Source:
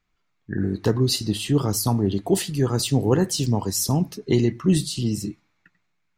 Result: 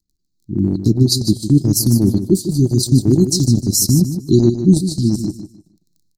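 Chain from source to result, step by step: crackle 12 per s -47 dBFS; Chebyshev band-stop 360–4100 Hz, order 5; level rider gain up to 9 dB; transient shaper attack 0 dB, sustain -12 dB; feedback delay 152 ms, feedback 24%, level -10 dB; trim +1.5 dB

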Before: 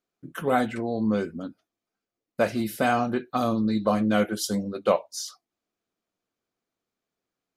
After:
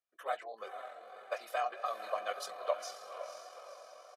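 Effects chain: high-pass 620 Hz 24 dB/octave; treble shelf 6.7 kHz -9 dB; comb 1.7 ms, depth 45%; echo that smears into a reverb 925 ms, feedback 55%, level -8 dB; flange 0.91 Hz, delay 2.3 ms, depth 1 ms, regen +70%; granular stretch 0.55×, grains 45 ms; trim -4 dB

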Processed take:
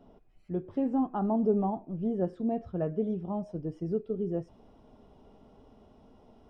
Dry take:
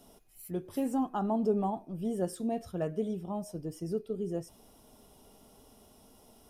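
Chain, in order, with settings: tape spacing loss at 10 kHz 45 dB, from 3.06 s at 10 kHz 35 dB; trim +4 dB

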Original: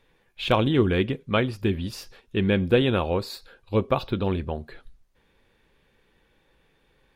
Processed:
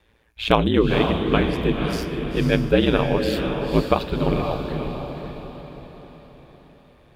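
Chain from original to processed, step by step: ring modulator 57 Hz; echo that smears into a reverb 516 ms, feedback 47%, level -5 dB; trim +5.5 dB

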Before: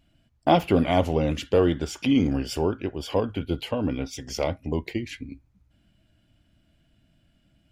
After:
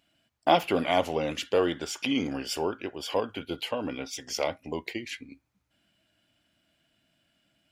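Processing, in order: high-pass 720 Hz 6 dB/octave; trim +1.5 dB

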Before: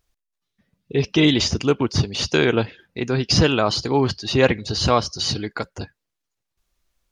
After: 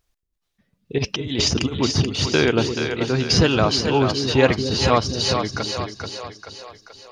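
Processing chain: 0.98–1.80 s: compressor with a negative ratio -22 dBFS, ratio -0.5; two-band feedback delay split 410 Hz, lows 231 ms, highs 433 ms, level -6 dB

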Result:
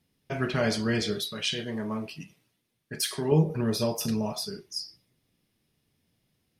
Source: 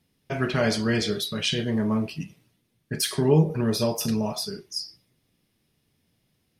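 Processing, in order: 1.28–3.32 s: bass shelf 310 Hz -8.5 dB; trim -3 dB

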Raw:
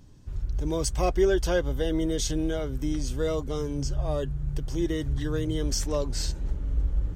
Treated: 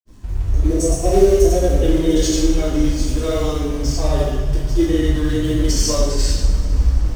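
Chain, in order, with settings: time-frequency box 0.33–1.84 s, 760–5400 Hz -15 dB; in parallel at -8 dB: companded quantiser 4-bit; on the sum: granulator, pitch spread up and down by 0 st; reverberation, pre-delay 3 ms, DRR -6.5 dB; trim +1 dB

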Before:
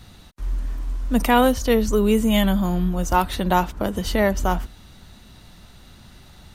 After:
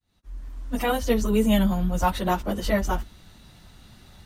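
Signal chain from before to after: fade-in on the opening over 1.73 s; plain phase-vocoder stretch 0.65×

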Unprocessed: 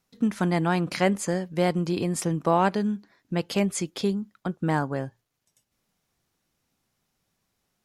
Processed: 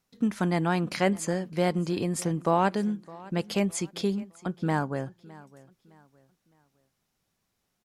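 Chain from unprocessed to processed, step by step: feedback delay 611 ms, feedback 34%, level -21 dB; trim -2 dB

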